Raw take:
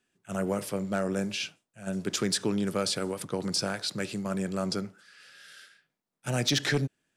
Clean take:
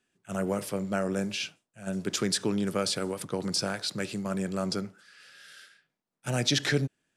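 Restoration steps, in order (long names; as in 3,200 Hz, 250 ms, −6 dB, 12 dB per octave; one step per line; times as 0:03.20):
clipped peaks rebuilt −18 dBFS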